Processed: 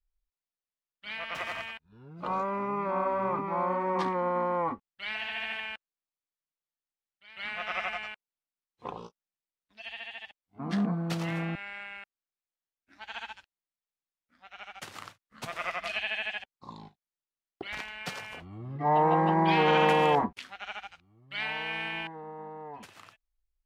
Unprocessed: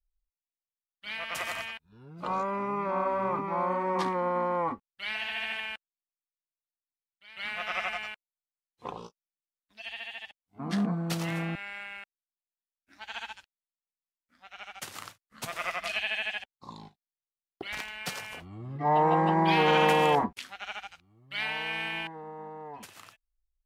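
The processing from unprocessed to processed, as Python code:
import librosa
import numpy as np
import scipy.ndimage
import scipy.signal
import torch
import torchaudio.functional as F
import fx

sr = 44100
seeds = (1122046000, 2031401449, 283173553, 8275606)

y = fx.median_filter(x, sr, points=5, at=(1.34, 2.61))
y = fx.high_shelf(y, sr, hz=6600.0, db=-12.0)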